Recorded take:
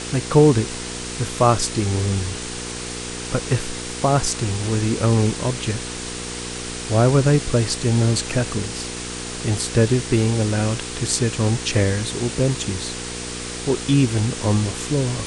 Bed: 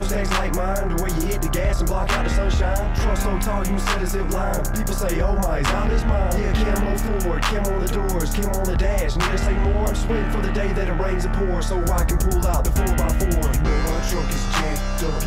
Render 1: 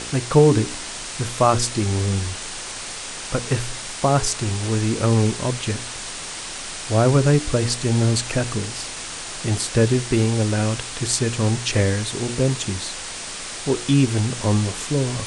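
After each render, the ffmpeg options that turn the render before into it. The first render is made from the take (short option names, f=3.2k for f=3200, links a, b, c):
-af "bandreject=f=60:t=h:w=4,bandreject=f=120:t=h:w=4,bandreject=f=180:t=h:w=4,bandreject=f=240:t=h:w=4,bandreject=f=300:t=h:w=4,bandreject=f=360:t=h:w=4,bandreject=f=420:t=h:w=4,bandreject=f=480:t=h:w=4"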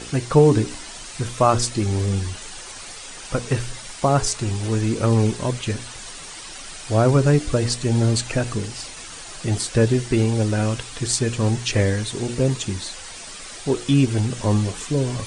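-af "afftdn=nr=9:nf=-33"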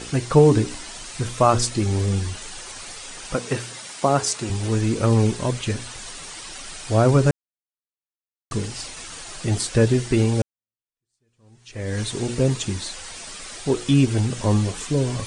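-filter_complex "[0:a]asettb=1/sr,asplit=3[a][b][c];[a]atrim=end=3.344[d];[b]atrim=start=3.34:end=4.5,asetpts=PTS-STARTPTS,afade=t=in:d=0.004:c=qsin,afade=t=out:st=1.156:d=0.004:c=qsin,highpass=170[e];[c]atrim=start=4.496[f];[d][e]acrossfade=d=0.004:c1=hsin:c2=qsin[g];[g][f]acrossfade=d=0.004:c1=qsin:c2=hsin,asplit=4[h][i][j][k];[h]atrim=end=7.31,asetpts=PTS-STARTPTS,afade=t=out:st=7.306:d=0.004:c=hsin[l];[i]atrim=start=7.31:end=8.51,asetpts=PTS-STARTPTS,volume=0[m];[j]atrim=start=8.51:end=10.42,asetpts=PTS-STARTPTS,afade=t=in:d=0.004:c=hsin,afade=t=out:st=1.906:d=0.004:c=hsin[n];[k]atrim=start=10.42,asetpts=PTS-STARTPTS,afade=t=in:d=1.58:c=exp[o];[l][m][n][o]concat=n=4:v=0:a=1"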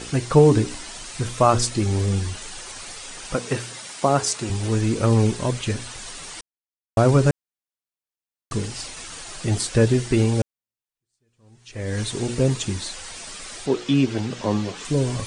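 -filter_complex "[0:a]asettb=1/sr,asplit=3[a][b][c];[a]atrim=end=13.664[d];[b]atrim=start=13.66:end=14.85,asetpts=PTS-STARTPTS,afade=t=in:d=0.004:c=qsin,afade=t=out:st=1.186:d=0.004:c=qsin,acrossover=split=150 6500:gain=0.2 1 0.0708[e][f][g];[e][f][g]amix=inputs=3:normalize=0[h];[c]atrim=start=14.846[i];[d][h]acrossfade=d=0.004:c1=hsin:c2=qsin[j];[j][i]acrossfade=d=0.004:c1=qsin:c2=hsin,asplit=3[k][l][m];[k]atrim=end=6.41,asetpts=PTS-STARTPTS,afade=t=out:st=6.406:d=0.004:c=hsin[n];[l]atrim=start=6.41:end=6.97,asetpts=PTS-STARTPTS,volume=0[o];[m]atrim=start=6.97,asetpts=PTS-STARTPTS,afade=t=in:d=0.004:c=hsin[p];[n][o][p]concat=n=3:v=0:a=1"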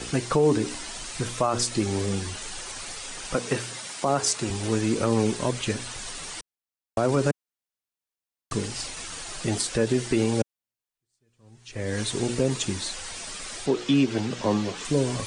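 -filter_complex "[0:a]acrossover=split=170|830[a][b][c];[a]acompressor=threshold=-34dB:ratio=6[d];[d][b][c]amix=inputs=3:normalize=0,alimiter=limit=-12.5dB:level=0:latency=1:release=90"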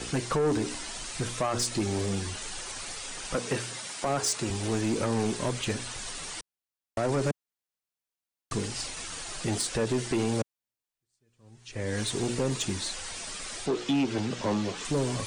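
-af "aeval=exprs='0.251*(cos(1*acos(clip(val(0)/0.251,-1,1)))-cos(1*PI/2))+0.00562*(cos(7*acos(clip(val(0)/0.251,-1,1)))-cos(7*PI/2))':c=same,asoftclip=type=tanh:threshold=-21.5dB"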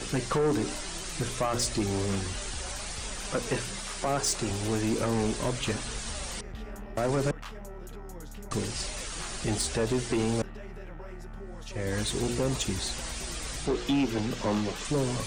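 -filter_complex "[1:a]volume=-21dB[a];[0:a][a]amix=inputs=2:normalize=0"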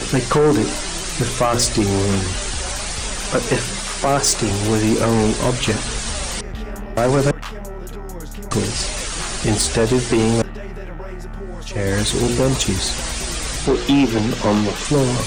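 -af "volume=11.5dB"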